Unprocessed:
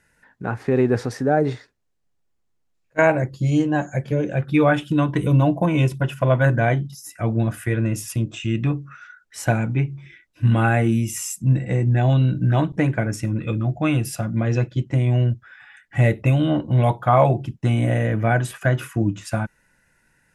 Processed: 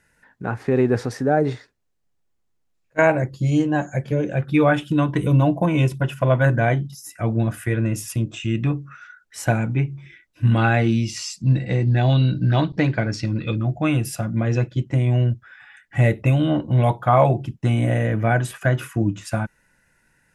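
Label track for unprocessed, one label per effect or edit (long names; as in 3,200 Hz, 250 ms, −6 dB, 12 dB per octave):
10.570000	13.560000	low-pass with resonance 4,500 Hz, resonance Q 7.3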